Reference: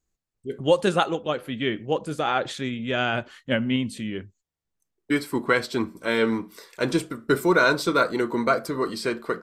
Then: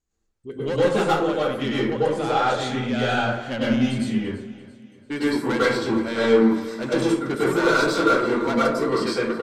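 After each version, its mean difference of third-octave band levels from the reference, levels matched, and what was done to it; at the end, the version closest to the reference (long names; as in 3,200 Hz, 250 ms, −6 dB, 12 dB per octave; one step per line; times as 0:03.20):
9.5 dB: low-pass filter 8,300 Hz 12 dB per octave
soft clipping −21 dBFS, distortion −9 dB
repeating echo 339 ms, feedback 45%, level −17 dB
dense smooth reverb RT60 0.6 s, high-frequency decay 0.5×, pre-delay 90 ms, DRR −7.5 dB
level −2.5 dB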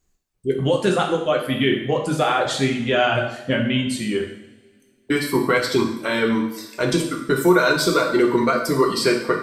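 6.0 dB: reverb reduction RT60 1.2 s
downward compressor, threshold −22 dBFS, peak gain reduction 9 dB
brickwall limiter −18.5 dBFS, peak gain reduction 6.5 dB
coupled-rooms reverb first 0.74 s, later 2.4 s, from −22 dB, DRR 0 dB
level +8 dB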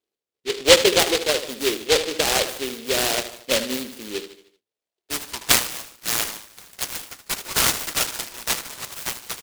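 14.0 dB: high-pass filter sweep 430 Hz → 1,900 Hz, 0:04.66–0:05.71
bad sample-rate conversion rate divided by 4×, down filtered, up hold
on a send: repeating echo 76 ms, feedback 47%, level −11 dB
on the sum: short delay modulated by noise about 3,100 Hz, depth 0.23 ms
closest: second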